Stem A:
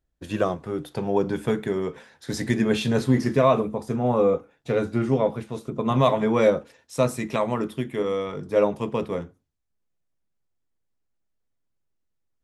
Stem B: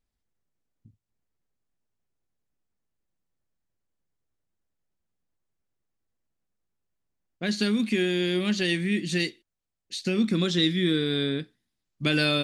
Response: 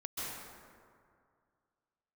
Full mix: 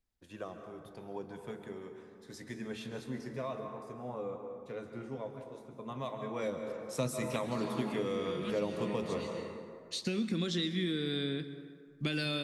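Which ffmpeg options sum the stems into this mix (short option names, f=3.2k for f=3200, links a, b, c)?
-filter_complex "[0:a]lowshelf=f=350:g=-5,volume=-7dB,afade=t=in:st=6.29:d=0.61:silence=0.237137,asplit=3[a][b][c];[b]volume=-6dB[d];[1:a]acompressor=threshold=-26dB:ratio=6,volume=-4.5dB,asplit=2[e][f];[f]volume=-13.5dB[g];[c]apad=whole_len=548375[h];[e][h]sidechaincompress=threshold=-50dB:ratio=8:attack=16:release=274[i];[2:a]atrim=start_sample=2205[j];[d][g]amix=inputs=2:normalize=0[k];[k][j]afir=irnorm=-1:irlink=0[l];[a][i][l]amix=inputs=3:normalize=0,acrossover=split=320|3000[m][n][o];[n]acompressor=threshold=-35dB:ratio=6[p];[m][p][o]amix=inputs=3:normalize=0"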